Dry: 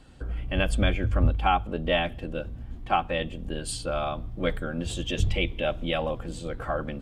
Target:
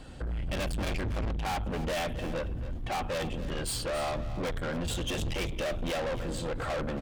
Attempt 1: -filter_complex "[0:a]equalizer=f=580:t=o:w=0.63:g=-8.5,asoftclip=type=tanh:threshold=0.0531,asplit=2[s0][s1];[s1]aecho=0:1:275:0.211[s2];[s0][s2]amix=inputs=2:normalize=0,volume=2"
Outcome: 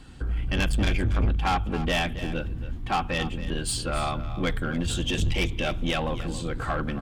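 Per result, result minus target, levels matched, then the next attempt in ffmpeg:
500 Hz band -5.0 dB; saturation: distortion -6 dB
-filter_complex "[0:a]equalizer=f=580:t=o:w=0.63:g=3.5,asoftclip=type=tanh:threshold=0.0531,asplit=2[s0][s1];[s1]aecho=0:1:275:0.211[s2];[s0][s2]amix=inputs=2:normalize=0,volume=2"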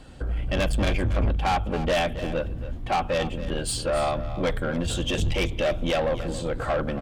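saturation: distortion -5 dB
-filter_complex "[0:a]equalizer=f=580:t=o:w=0.63:g=3.5,asoftclip=type=tanh:threshold=0.0158,asplit=2[s0][s1];[s1]aecho=0:1:275:0.211[s2];[s0][s2]amix=inputs=2:normalize=0,volume=2"

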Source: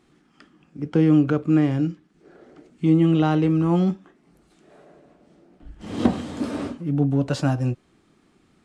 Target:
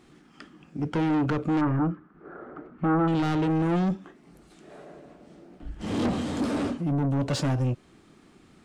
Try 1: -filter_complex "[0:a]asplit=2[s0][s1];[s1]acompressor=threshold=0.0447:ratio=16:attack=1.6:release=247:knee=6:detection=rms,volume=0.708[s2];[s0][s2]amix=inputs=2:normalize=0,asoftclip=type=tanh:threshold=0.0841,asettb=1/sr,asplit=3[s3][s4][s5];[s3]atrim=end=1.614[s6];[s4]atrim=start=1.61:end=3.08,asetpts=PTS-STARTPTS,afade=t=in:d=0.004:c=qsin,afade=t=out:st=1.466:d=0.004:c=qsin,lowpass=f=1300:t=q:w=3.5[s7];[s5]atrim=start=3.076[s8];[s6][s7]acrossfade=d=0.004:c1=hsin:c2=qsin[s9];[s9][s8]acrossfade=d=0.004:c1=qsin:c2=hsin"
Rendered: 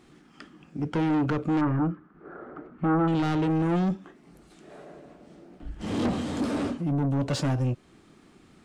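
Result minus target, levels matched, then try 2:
compression: peak gain reduction +5.5 dB
-filter_complex "[0:a]asplit=2[s0][s1];[s1]acompressor=threshold=0.0891:ratio=16:attack=1.6:release=247:knee=6:detection=rms,volume=0.708[s2];[s0][s2]amix=inputs=2:normalize=0,asoftclip=type=tanh:threshold=0.0841,asettb=1/sr,asplit=3[s3][s4][s5];[s3]atrim=end=1.614[s6];[s4]atrim=start=1.61:end=3.08,asetpts=PTS-STARTPTS,afade=t=in:d=0.004:c=qsin,afade=t=out:st=1.466:d=0.004:c=qsin,lowpass=f=1300:t=q:w=3.5[s7];[s5]atrim=start=3.076[s8];[s6][s7]acrossfade=d=0.004:c1=hsin:c2=qsin[s9];[s9][s8]acrossfade=d=0.004:c1=qsin:c2=hsin"

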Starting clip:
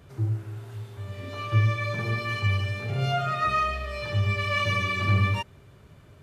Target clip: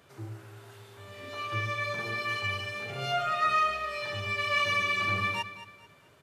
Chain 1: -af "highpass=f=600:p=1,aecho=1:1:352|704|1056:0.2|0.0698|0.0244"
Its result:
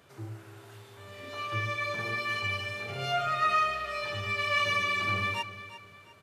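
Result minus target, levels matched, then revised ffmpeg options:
echo 132 ms late
-af "highpass=f=600:p=1,aecho=1:1:220|440|660:0.2|0.0698|0.0244"

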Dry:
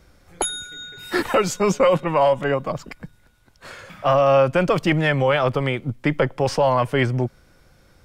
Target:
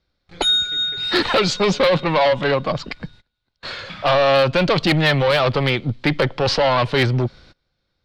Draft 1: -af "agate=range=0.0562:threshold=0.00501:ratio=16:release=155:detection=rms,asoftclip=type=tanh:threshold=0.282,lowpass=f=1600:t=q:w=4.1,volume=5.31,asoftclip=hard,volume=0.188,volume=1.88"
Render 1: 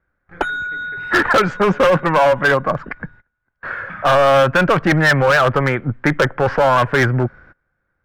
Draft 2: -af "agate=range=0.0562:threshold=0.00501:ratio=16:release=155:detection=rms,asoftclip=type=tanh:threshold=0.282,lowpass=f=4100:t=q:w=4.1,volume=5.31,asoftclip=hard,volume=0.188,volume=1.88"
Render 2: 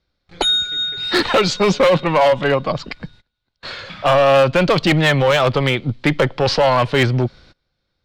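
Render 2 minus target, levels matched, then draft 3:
saturation: distortion -8 dB
-af "agate=range=0.0562:threshold=0.00501:ratio=16:release=155:detection=rms,asoftclip=type=tanh:threshold=0.126,lowpass=f=4100:t=q:w=4.1,volume=5.31,asoftclip=hard,volume=0.188,volume=1.88"

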